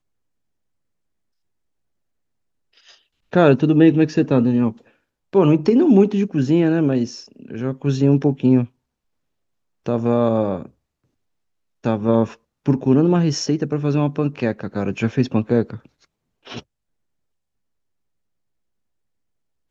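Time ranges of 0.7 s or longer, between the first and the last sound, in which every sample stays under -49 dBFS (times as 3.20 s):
8.69–9.86 s
10.71–11.84 s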